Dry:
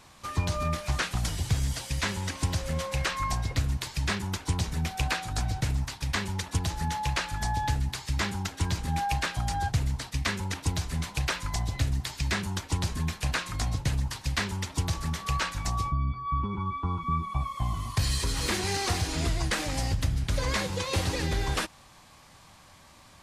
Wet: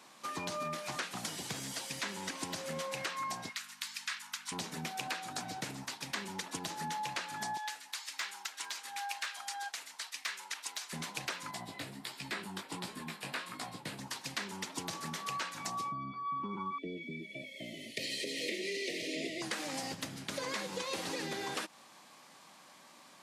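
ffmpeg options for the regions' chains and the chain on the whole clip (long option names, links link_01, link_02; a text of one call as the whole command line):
ffmpeg -i in.wav -filter_complex "[0:a]asettb=1/sr,asplit=3[link_01][link_02][link_03];[link_01]atrim=end=3.494[link_04];[link_02]atrim=start=3.49:end=4.52,asetpts=PTS-STARTPTS,afade=type=in:duration=0.004:curve=qsin,afade=type=out:start_time=1.026:duration=0.004:curve=qsin,highpass=frequency=1200:width=0.5412,highpass=frequency=1200:width=1.3066,aeval=exprs='val(0)+0.002*(sin(2*PI*50*n/s)+sin(2*PI*2*50*n/s)/2+sin(2*PI*3*50*n/s)/3+sin(2*PI*4*50*n/s)/4+sin(2*PI*5*50*n/s)/5)':channel_layout=same[link_05];[link_03]atrim=start=4.516[link_06];[link_04][link_05]acrossfade=duration=0.004:curve1=hsin:curve2=qsin[link_07];[link_07][link_06]acrossfade=duration=0.004:curve1=qsin:curve2=hsin,asettb=1/sr,asplit=3[link_08][link_09][link_10];[link_08]atrim=end=7.574[link_11];[link_09]atrim=start=7.57:end=10.93,asetpts=PTS-STARTPTS,afade=type=in:duration=0.004:curve=qsin,afade=type=out:start_time=3.356:duration=0.004:curve=qsin,highpass=1200,volume=22.5dB,asoftclip=hard,volume=-22.5dB[link_12];[link_10]atrim=start=10.926[link_13];[link_11][link_12]acrossfade=duration=0.004:curve1=hsin:curve2=qsin[link_14];[link_14][link_13]acrossfade=duration=0.004:curve1=qsin:curve2=hsin,asettb=1/sr,asplit=3[link_15][link_16][link_17];[link_15]atrim=end=11.514[link_18];[link_16]atrim=start=11.51:end=13.99,asetpts=PTS-STARTPTS,afade=type=in:duration=0.004:curve=qsin,afade=type=out:start_time=2.476:duration=0.004:curve=qsin,equalizer=frequency=6200:width_type=o:width=0.39:gain=-10,flanger=delay=15:depth=5.6:speed=1.4[link_19];[link_17]atrim=start=13.986[link_20];[link_18][link_19]acrossfade=duration=0.004:curve1=hsin:curve2=qsin[link_21];[link_21][link_20]acrossfade=duration=0.004:curve1=qsin:curve2=hsin,asettb=1/sr,asplit=3[link_22][link_23][link_24];[link_22]atrim=end=16.784[link_25];[link_23]atrim=start=16.78:end=19.42,asetpts=PTS-STARTPTS,afade=type=in:duration=0.004:curve=qsin,afade=type=out:start_time=2.636:duration=0.004:curve=qsin,asuperstop=centerf=1100:order=20:qfactor=0.89,acrossover=split=280 3400:gain=0.2 1 0.224[link_26][link_27][link_28];[link_26][link_27][link_28]amix=inputs=3:normalize=0,acontrast=66[link_29];[link_24]atrim=start=19.416[link_30];[link_25][link_29]acrossfade=duration=0.004:curve1=hsin:curve2=qsin[link_31];[link_31][link_30]acrossfade=duration=0.004:curve1=qsin:curve2=hsin,highpass=frequency=200:width=0.5412,highpass=frequency=200:width=1.3066,acompressor=threshold=-32dB:ratio=6,volume=-2.5dB" out.wav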